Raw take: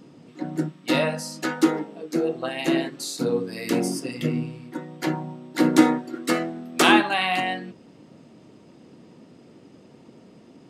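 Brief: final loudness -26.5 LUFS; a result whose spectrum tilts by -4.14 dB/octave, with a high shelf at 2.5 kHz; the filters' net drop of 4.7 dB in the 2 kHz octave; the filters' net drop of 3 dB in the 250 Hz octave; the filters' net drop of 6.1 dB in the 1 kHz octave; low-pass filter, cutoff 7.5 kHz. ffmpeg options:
-af "lowpass=7500,equalizer=f=250:t=o:g=-3.5,equalizer=f=1000:t=o:g=-7.5,equalizer=f=2000:t=o:g=-6,highshelf=f=2500:g=3.5,volume=1.06"

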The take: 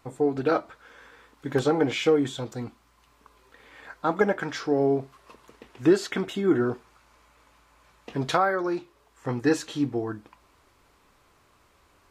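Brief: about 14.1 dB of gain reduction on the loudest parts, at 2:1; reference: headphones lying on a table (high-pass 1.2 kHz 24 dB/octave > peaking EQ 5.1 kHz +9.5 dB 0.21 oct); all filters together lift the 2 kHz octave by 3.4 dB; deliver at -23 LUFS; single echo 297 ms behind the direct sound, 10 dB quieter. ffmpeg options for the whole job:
-af "equalizer=f=2000:t=o:g=5,acompressor=threshold=0.00794:ratio=2,highpass=f=1200:w=0.5412,highpass=f=1200:w=1.3066,equalizer=f=5100:t=o:w=0.21:g=9.5,aecho=1:1:297:0.316,volume=11.2"

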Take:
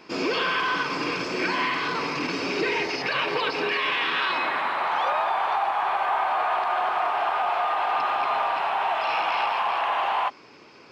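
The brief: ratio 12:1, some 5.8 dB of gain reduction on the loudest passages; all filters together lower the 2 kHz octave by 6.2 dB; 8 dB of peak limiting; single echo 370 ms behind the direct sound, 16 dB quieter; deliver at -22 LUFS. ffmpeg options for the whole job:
-af "equalizer=f=2000:t=o:g=-8.5,acompressor=threshold=0.0398:ratio=12,alimiter=level_in=1.68:limit=0.0631:level=0:latency=1,volume=0.596,aecho=1:1:370:0.158,volume=5.01"

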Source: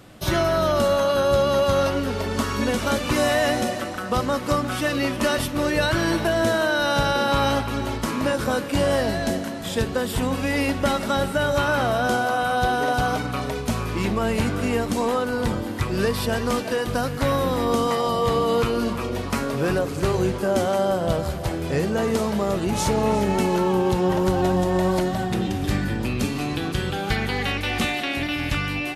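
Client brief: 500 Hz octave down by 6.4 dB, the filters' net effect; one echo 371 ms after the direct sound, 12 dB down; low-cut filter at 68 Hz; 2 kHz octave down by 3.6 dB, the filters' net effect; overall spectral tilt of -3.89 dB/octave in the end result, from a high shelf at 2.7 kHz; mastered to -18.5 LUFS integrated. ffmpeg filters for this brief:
-af "highpass=68,equalizer=f=500:t=o:g=-8,equalizer=f=2000:t=o:g=-8,highshelf=f=2700:g=8,aecho=1:1:371:0.251,volume=2"

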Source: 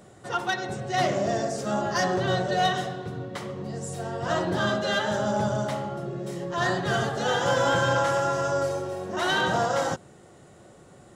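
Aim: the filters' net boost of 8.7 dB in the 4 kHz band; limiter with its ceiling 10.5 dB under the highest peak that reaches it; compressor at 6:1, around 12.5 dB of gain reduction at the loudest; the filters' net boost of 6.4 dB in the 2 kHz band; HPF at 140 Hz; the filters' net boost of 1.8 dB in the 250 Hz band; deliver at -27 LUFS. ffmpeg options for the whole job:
-af "highpass=140,equalizer=f=250:t=o:g=3.5,equalizer=f=2000:t=o:g=7,equalizer=f=4000:t=o:g=8.5,acompressor=threshold=0.0316:ratio=6,volume=3.55,alimiter=limit=0.112:level=0:latency=1"

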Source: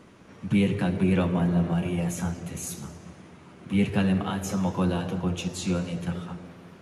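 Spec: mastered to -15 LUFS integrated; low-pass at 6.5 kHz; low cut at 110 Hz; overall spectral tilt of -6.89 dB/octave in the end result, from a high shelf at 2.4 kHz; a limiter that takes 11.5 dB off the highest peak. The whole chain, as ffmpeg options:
-af "highpass=110,lowpass=6500,highshelf=f=2400:g=-4,volume=8.41,alimiter=limit=0.501:level=0:latency=1"

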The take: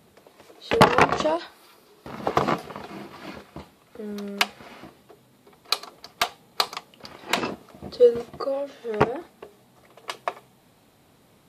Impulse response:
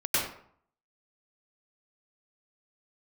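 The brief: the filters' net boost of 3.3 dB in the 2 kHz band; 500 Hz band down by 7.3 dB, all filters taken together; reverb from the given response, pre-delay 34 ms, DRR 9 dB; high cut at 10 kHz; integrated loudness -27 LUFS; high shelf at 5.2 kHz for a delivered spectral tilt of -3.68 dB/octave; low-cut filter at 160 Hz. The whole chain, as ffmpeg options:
-filter_complex "[0:a]highpass=160,lowpass=10000,equalizer=f=500:t=o:g=-8.5,equalizer=f=2000:t=o:g=5.5,highshelf=f=5200:g=-6,asplit=2[s0][s1];[1:a]atrim=start_sample=2205,adelay=34[s2];[s1][s2]afir=irnorm=-1:irlink=0,volume=0.0944[s3];[s0][s3]amix=inputs=2:normalize=0,volume=0.944"

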